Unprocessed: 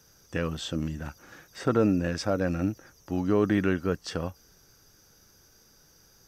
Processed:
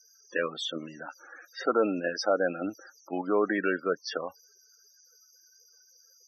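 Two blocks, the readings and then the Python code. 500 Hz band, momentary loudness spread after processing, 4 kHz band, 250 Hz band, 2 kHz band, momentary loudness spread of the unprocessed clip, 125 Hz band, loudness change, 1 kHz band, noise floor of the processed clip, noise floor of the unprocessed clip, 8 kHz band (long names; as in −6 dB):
+0.5 dB, 17 LU, +2.5 dB, −6.0 dB, +3.5 dB, 14 LU, −17.0 dB, −1.5 dB, +3.0 dB, −62 dBFS, −60 dBFS, −1.5 dB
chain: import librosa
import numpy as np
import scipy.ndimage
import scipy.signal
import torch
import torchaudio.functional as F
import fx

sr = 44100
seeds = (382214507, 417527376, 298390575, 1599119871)

p1 = fx.block_float(x, sr, bits=7)
p2 = fx.level_steps(p1, sr, step_db=14)
p3 = p1 + (p2 * librosa.db_to_amplitude(1.0))
p4 = scipy.signal.sosfilt(scipy.signal.butter(2, 480.0, 'highpass', fs=sr, output='sos'), p3)
p5 = fx.high_shelf(p4, sr, hz=8000.0, db=4.0)
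y = fx.spec_topn(p5, sr, count=32)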